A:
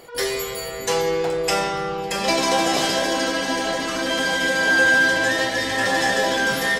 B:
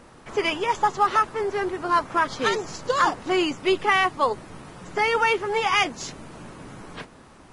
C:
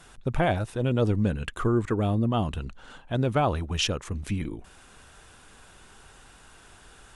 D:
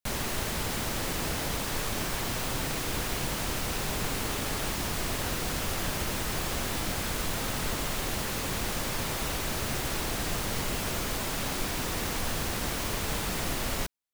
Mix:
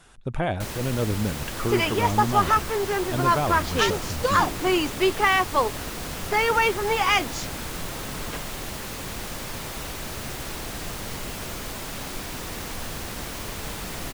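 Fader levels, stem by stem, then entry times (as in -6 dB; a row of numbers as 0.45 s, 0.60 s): mute, 0.0 dB, -2.0 dB, -2.0 dB; mute, 1.35 s, 0.00 s, 0.55 s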